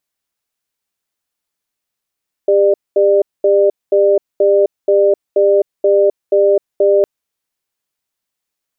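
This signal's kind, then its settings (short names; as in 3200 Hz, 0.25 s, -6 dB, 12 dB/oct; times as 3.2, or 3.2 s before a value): cadence 400 Hz, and 597 Hz, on 0.26 s, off 0.22 s, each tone -10.5 dBFS 4.56 s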